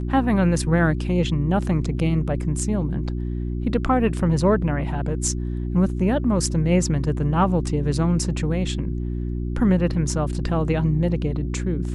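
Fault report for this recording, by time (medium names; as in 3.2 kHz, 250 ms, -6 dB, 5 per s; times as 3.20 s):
hum 60 Hz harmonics 6 -26 dBFS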